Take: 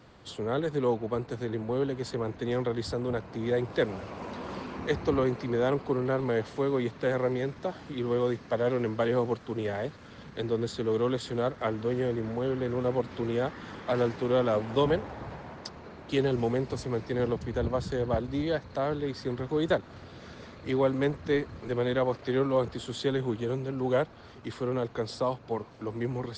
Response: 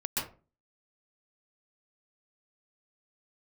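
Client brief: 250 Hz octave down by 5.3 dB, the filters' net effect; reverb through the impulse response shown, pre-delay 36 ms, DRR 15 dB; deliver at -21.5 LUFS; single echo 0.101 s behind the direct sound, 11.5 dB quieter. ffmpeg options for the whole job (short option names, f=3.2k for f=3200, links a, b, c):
-filter_complex "[0:a]equalizer=f=250:t=o:g=-7,aecho=1:1:101:0.266,asplit=2[a][b];[1:a]atrim=start_sample=2205,adelay=36[c];[b][c]afir=irnorm=-1:irlink=0,volume=-20.5dB[d];[a][d]amix=inputs=2:normalize=0,volume=10.5dB"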